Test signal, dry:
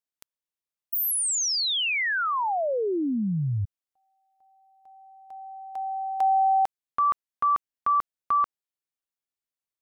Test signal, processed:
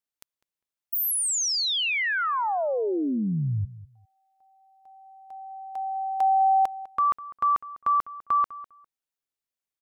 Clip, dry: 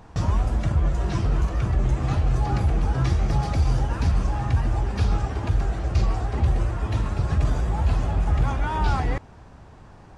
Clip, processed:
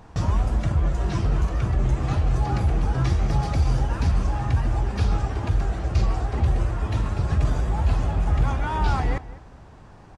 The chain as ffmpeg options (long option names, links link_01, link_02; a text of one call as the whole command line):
ffmpeg -i in.wav -filter_complex "[0:a]asplit=2[link_01][link_02];[link_02]adelay=201,lowpass=frequency=2300:poles=1,volume=-16.5dB,asplit=2[link_03][link_04];[link_04]adelay=201,lowpass=frequency=2300:poles=1,volume=0.2[link_05];[link_01][link_03][link_05]amix=inputs=3:normalize=0" out.wav